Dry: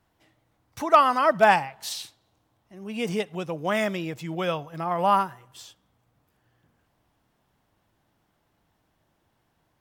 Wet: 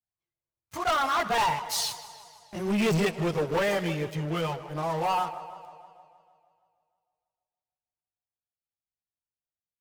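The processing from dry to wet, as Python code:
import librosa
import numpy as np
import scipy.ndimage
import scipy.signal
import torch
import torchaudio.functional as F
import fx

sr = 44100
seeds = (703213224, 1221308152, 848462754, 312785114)

y = fx.doppler_pass(x, sr, speed_mps=26, closest_m=6.9, pass_at_s=2.49)
y = fx.chorus_voices(y, sr, voices=4, hz=0.25, base_ms=19, depth_ms=1.4, mix_pct=65)
y = fx.leveller(y, sr, passes=5)
y = fx.echo_banded(y, sr, ms=157, feedback_pct=65, hz=660.0, wet_db=-13.5)
y = fx.echo_warbled(y, sr, ms=156, feedback_pct=61, rate_hz=2.8, cents=101, wet_db=-17.0)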